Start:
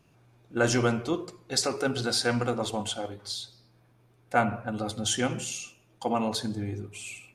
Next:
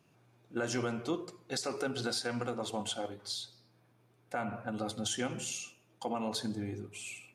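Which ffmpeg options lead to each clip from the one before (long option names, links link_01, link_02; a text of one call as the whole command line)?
ffmpeg -i in.wav -af "highpass=120,alimiter=limit=-20dB:level=0:latency=1:release=230,volume=-3.5dB" out.wav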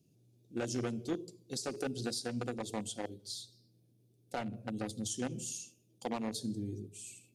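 ffmpeg -i in.wav -filter_complex "[0:a]equalizer=frequency=2100:width=0.86:gain=-10.5,acrossover=split=480|2700[link_01][link_02][link_03];[link_02]acrusher=bits=5:mix=0:aa=0.5[link_04];[link_01][link_04][link_03]amix=inputs=3:normalize=0" out.wav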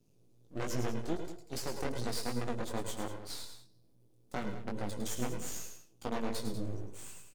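ffmpeg -i in.wav -af "aeval=exprs='max(val(0),0)':channel_layout=same,flanger=delay=16.5:depth=6.9:speed=2.5,aecho=1:1:105|107|192:0.299|0.299|0.224,volume=6dB" out.wav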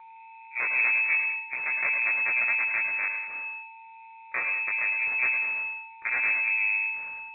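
ffmpeg -i in.wav -af "aeval=exprs='val(0)+0.00224*sin(2*PI*1700*n/s)':channel_layout=same,lowpass=frequency=2200:width_type=q:width=0.5098,lowpass=frequency=2200:width_type=q:width=0.6013,lowpass=frequency=2200:width_type=q:width=0.9,lowpass=frequency=2200:width_type=q:width=2.563,afreqshift=-2600,volume=7.5dB" -ar 8000 -c:a pcm_alaw out.wav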